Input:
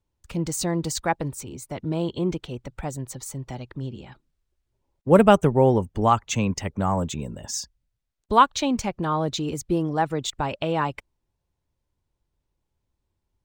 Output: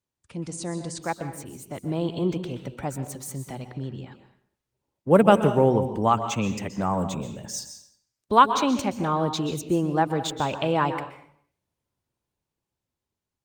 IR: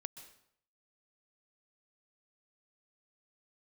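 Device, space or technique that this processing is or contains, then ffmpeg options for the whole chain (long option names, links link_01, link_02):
far-field microphone of a smart speaker: -filter_complex "[1:a]atrim=start_sample=2205[link_01];[0:a][link_01]afir=irnorm=-1:irlink=0,highpass=110,dynaudnorm=framelen=550:gausssize=7:maxgain=9dB,volume=-2dB" -ar 48000 -c:a libopus -b:a 32k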